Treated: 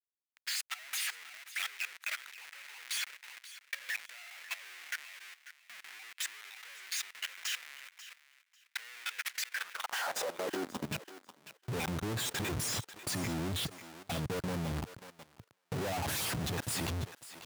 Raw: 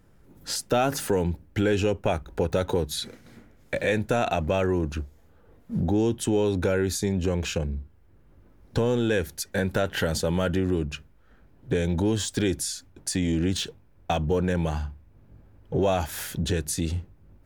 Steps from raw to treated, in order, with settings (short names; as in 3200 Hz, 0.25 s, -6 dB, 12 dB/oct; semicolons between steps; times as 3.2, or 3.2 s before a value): random spectral dropouts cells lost 31%; Schmitt trigger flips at -42 dBFS; high-pass sweep 2000 Hz -> 110 Hz, 9.48–11.18; on a send: thinning echo 0.544 s, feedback 18%, high-pass 760 Hz, level -10 dB; on the sum: level quantiser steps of 15 dB; gain -5 dB